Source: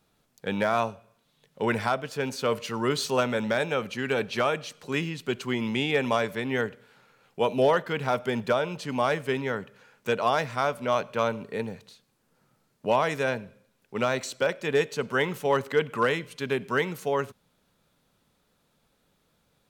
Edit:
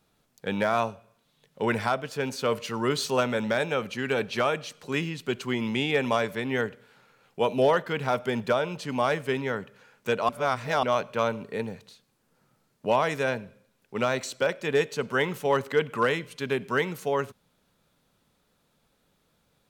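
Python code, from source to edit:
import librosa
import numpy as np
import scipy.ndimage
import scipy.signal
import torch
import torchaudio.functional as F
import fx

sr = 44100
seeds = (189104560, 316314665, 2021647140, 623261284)

y = fx.edit(x, sr, fx.reverse_span(start_s=10.29, length_s=0.54), tone=tone)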